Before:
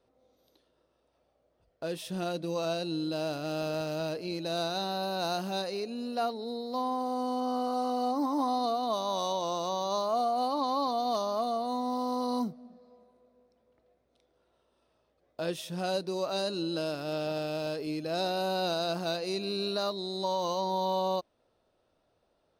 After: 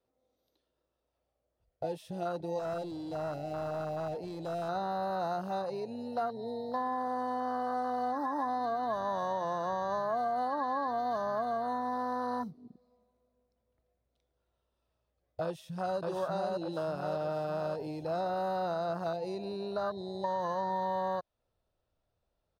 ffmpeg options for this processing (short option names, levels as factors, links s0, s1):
-filter_complex "[0:a]asettb=1/sr,asplit=3[s0][s1][s2];[s0]atrim=end=2.594[s3];[s1]atrim=start=2.59:end=4.69,asetpts=PTS-STARTPTS,afade=t=in:d=0.004:c=qsin,afade=t=out:st=2.096:d=0.004:c=qsin,volume=53.1,asoftclip=hard,volume=0.0188[s4];[s2]atrim=start=4.686[s5];[s3][s4]acrossfade=d=0.004:c1=hsin:c2=qsin[s6];[s6][s5]acrossfade=d=0.004:c1=qsin:c2=hsin,asplit=2[s7][s8];[s8]afade=t=in:st=15.43:d=0.01,afade=t=out:st=15.98:d=0.01,aecho=0:1:590|1180|1770|2360|2950|3540|4130:0.891251|0.445625|0.222813|0.111406|0.0557032|0.0278516|0.0139258[s9];[s7][s9]amix=inputs=2:normalize=0,afwtdn=0.02,asubboost=boost=4:cutoff=130,acrossover=split=540|2100[s10][s11][s12];[s10]acompressor=threshold=0.00398:ratio=4[s13];[s11]acompressor=threshold=0.0112:ratio=4[s14];[s12]acompressor=threshold=0.00112:ratio=4[s15];[s13][s14][s15]amix=inputs=3:normalize=0,volume=2"